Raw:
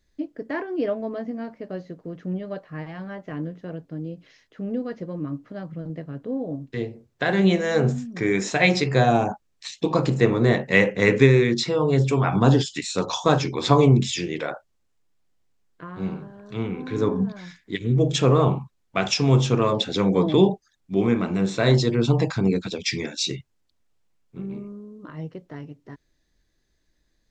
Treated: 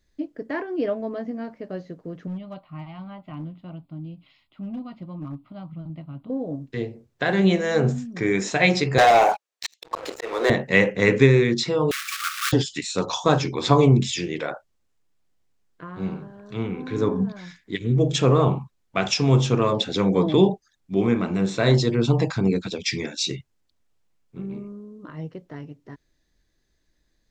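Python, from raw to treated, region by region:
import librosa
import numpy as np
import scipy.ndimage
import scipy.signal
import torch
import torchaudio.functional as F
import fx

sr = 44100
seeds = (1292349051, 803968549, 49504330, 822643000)

y = fx.chain(x, sr, fx.fixed_phaser(hz=1700.0, stages=6),
    fx.overload_stage(gain_db=27.5), at=(2.27, 6.3))
y = fx.chain(y, sr, fx.highpass(hz=470.0, slope=24),
    fx.auto_swell(attack_ms=396.0),
    fx.leveller(passes=3), at=(8.98, 10.5))
y = fx.chain(y, sr, fx.block_float(bits=3),
    fx.brickwall_highpass(low_hz=1100.0), at=(11.91, 12.53))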